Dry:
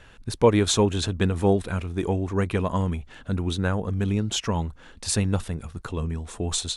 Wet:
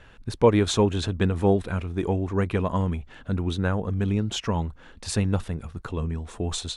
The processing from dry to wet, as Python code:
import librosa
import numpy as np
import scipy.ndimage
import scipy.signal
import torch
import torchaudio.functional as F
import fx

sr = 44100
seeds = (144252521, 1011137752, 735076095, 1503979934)

y = fx.high_shelf(x, sr, hz=5100.0, db=-9.0)